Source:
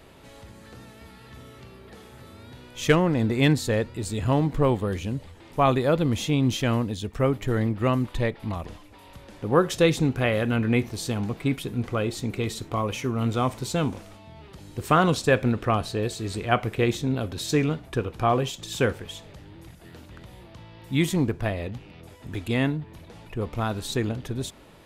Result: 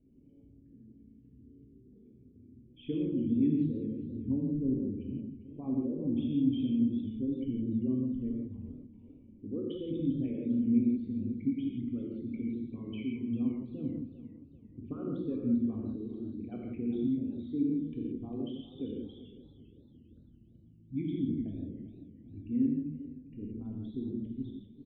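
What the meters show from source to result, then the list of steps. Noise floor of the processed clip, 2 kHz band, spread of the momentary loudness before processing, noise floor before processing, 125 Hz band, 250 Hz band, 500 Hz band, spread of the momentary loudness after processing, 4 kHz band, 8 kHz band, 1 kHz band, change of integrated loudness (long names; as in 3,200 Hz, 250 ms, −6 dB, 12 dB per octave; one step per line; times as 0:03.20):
−58 dBFS, below −30 dB, 13 LU, −49 dBFS, −14.0 dB, −3.5 dB, −17.0 dB, 15 LU, below −20 dB, below −40 dB, below −30 dB, −8.5 dB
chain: spectral envelope exaggerated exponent 3
formant resonators in series i
single-tap delay 163 ms −14.5 dB
reverb whose tail is shaped and stops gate 200 ms flat, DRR −2 dB
feedback echo with a swinging delay time 396 ms, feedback 41%, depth 114 cents, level −14.5 dB
level −6.5 dB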